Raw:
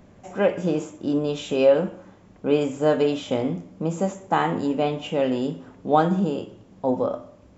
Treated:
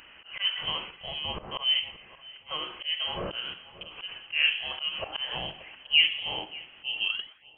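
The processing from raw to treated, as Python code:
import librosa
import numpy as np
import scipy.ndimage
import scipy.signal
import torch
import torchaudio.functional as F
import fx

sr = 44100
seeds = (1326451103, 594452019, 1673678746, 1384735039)

p1 = fx.tape_stop_end(x, sr, length_s=0.65)
p2 = scipy.signal.sosfilt(scipy.signal.butter(4, 690.0, 'highpass', fs=sr, output='sos'), p1)
p3 = fx.env_lowpass_down(p2, sr, base_hz=1200.0, full_db=-25.0)
p4 = fx.high_shelf(p3, sr, hz=2100.0, db=5.5)
p5 = fx.notch(p4, sr, hz=1300.0, q=16.0)
p6 = fx.level_steps(p5, sr, step_db=16)
p7 = p5 + (p6 * 10.0 ** (-1.0 / 20.0))
p8 = fx.auto_swell(p7, sr, attack_ms=189.0)
p9 = fx.rider(p8, sr, range_db=4, speed_s=2.0)
p10 = fx.freq_invert(p9, sr, carrier_hz=3600)
p11 = fx.echo_filtered(p10, sr, ms=579, feedback_pct=29, hz=1900.0, wet_db=-16.5)
y = p11 * 10.0 ** (1.5 / 20.0)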